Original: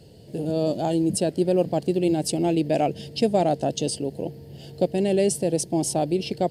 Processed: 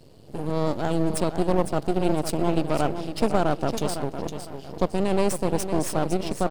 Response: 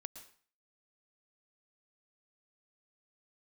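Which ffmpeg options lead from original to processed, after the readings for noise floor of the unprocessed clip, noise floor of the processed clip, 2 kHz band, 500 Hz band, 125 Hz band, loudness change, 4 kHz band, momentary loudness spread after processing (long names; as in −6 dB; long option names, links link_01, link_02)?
−45 dBFS, −43 dBFS, +4.0 dB, −2.5 dB, 0.0 dB, −2.0 dB, −3.0 dB, 8 LU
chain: -filter_complex "[0:a]aecho=1:1:507|1014|1521|2028:0.355|0.121|0.041|0.0139,aeval=exprs='max(val(0),0)':channel_layout=same,asplit=2[link_01][link_02];[1:a]atrim=start_sample=2205,lowpass=2900[link_03];[link_02][link_03]afir=irnorm=-1:irlink=0,volume=-10dB[link_04];[link_01][link_04]amix=inputs=2:normalize=0"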